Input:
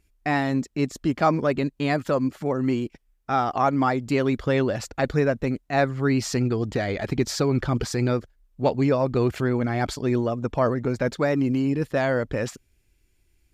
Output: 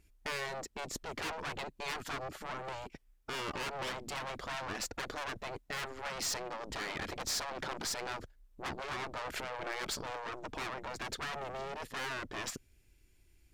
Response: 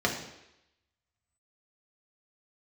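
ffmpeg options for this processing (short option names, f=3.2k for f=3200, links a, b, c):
-af "aeval=exprs='(tanh(31.6*val(0)+0.45)-tanh(0.45))/31.6':c=same,afftfilt=real='re*lt(hypot(re,im),0.0708)':imag='im*lt(hypot(re,im),0.0708)':win_size=1024:overlap=0.75,volume=1dB"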